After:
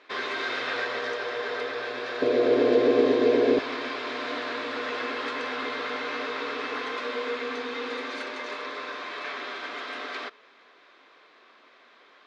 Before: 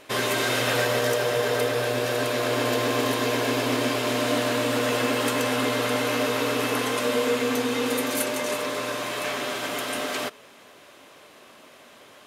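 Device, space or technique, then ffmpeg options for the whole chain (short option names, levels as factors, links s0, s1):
phone earpiece: -filter_complex "[0:a]highpass=450,equalizer=f=590:t=q:w=4:g=-9,equalizer=f=850:t=q:w=4:g=-5,equalizer=f=2900:t=q:w=4:g=-8,lowpass=f=4100:w=0.5412,lowpass=f=4100:w=1.3066,asettb=1/sr,asplit=3[s0][s1][s2];[s0]atrim=end=2.224[s3];[s1]atrim=start=2.22:end=3.59,asetpts=PTS-STARTPTS,afade=t=in:d=0.004:c=qsin,afade=t=out:st=1.366:d=0.004:c=qsin,lowshelf=f=710:t=q:w=1.5:g=13[s4];[s2]atrim=start=3.586[s5];[s3][s4]acrossfade=d=0.004:c1=hsin:c2=qsin[s6];[s6][s5]acrossfade=d=0.004:c1=qsin:c2=hsin,volume=0.794"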